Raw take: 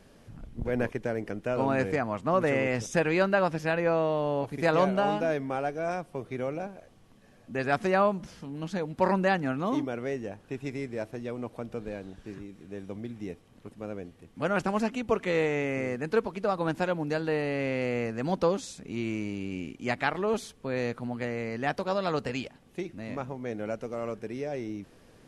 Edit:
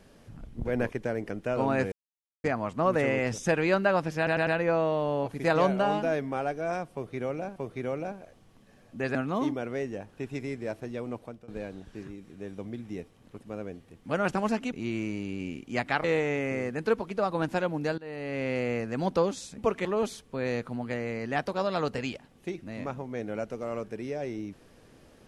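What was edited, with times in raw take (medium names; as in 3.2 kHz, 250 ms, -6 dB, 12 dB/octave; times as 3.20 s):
1.92 s: insert silence 0.52 s
3.65 s: stutter 0.10 s, 4 plays
6.11–6.74 s: loop, 2 plays
7.70–9.46 s: delete
11.45–11.79 s: fade out, to -21.5 dB
15.03–15.30 s: swap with 18.84–20.16 s
17.24–17.76 s: fade in, from -21.5 dB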